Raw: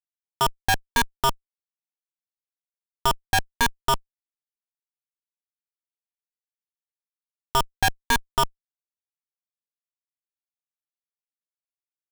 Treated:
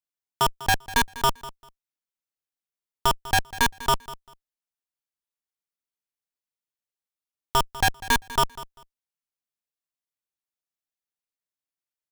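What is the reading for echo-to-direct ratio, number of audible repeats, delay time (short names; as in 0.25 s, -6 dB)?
-17.0 dB, 2, 0.197 s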